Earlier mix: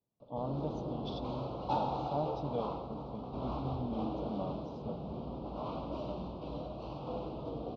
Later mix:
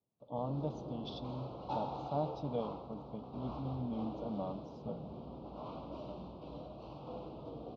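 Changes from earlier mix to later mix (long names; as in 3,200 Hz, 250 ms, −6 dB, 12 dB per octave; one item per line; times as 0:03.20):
background −6.0 dB
master: add high-pass filter 55 Hz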